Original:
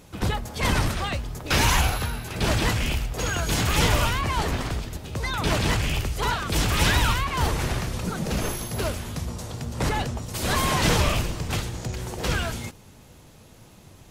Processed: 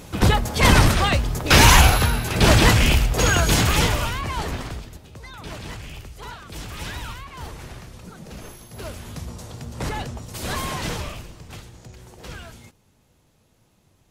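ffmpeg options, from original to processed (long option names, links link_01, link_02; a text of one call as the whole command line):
ffmpeg -i in.wav -af "volume=17.5dB,afade=type=out:start_time=3.32:duration=0.64:silence=0.298538,afade=type=out:start_time=4.53:duration=0.67:silence=0.316228,afade=type=in:start_time=8.68:duration=0.43:silence=0.354813,afade=type=out:start_time=10.46:duration=0.71:silence=0.354813" out.wav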